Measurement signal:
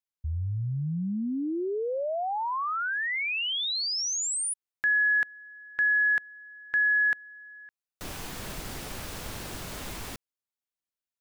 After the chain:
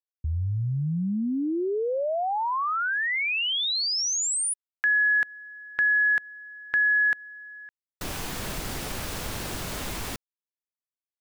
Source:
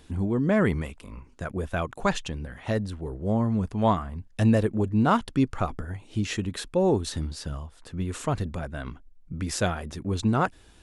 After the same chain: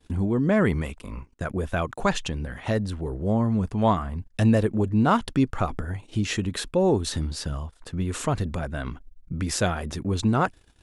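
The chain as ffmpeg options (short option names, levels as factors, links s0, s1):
-filter_complex "[0:a]agate=range=0.0224:threshold=0.00398:ratio=3:release=28:detection=peak,asplit=2[s0][s1];[s1]acompressor=threshold=0.0158:ratio=6:attack=9.3:release=152:detection=peak,volume=1[s2];[s0][s2]amix=inputs=2:normalize=0"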